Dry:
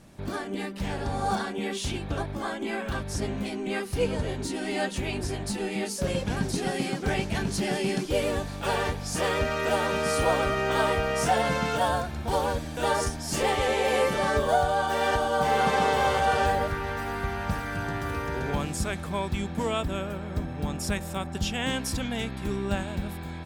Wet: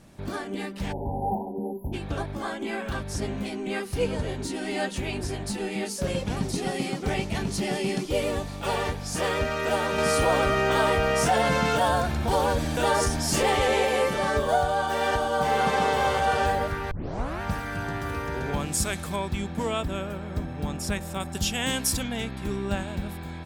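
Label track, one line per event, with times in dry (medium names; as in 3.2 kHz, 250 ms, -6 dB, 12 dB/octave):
0.920000	1.930000	spectral selection erased 1–11 kHz
6.190000	8.880000	band-stop 1.6 kHz, Q 9
9.980000	13.850000	level flattener amount 50%
16.910000	16.910000	tape start 0.50 s
18.720000	19.160000	treble shelf 3.9 kHz +10.5 dB
21.200000	22.030000	peaking EQ 14 kHz +11.5 dB 1.8 oct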